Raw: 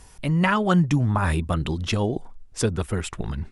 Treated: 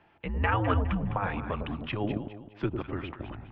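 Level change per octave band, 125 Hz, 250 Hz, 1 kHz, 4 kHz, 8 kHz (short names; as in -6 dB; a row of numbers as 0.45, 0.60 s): -9.0 dB, -9.0 dB, -5.0 dB, -10.5 dB, under -40 dB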